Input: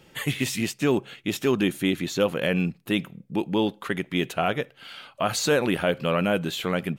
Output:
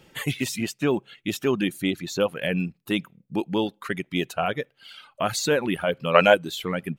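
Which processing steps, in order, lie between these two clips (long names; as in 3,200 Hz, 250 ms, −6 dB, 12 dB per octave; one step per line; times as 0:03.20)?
gain on a spectral selection 0:06.15–0:06.35, 410–8,100 Hz +11 dB
reverb reduction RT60 1.4 s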